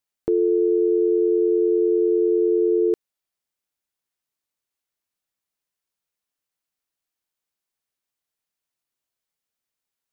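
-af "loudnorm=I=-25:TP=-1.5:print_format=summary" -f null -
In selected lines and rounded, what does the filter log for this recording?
Input Integrated:    -20.0 LUFS
Input True Peak:     -12.6 dBTP
Input LRA:             4.5 LU
Input Threshold:     -30.0 LUFS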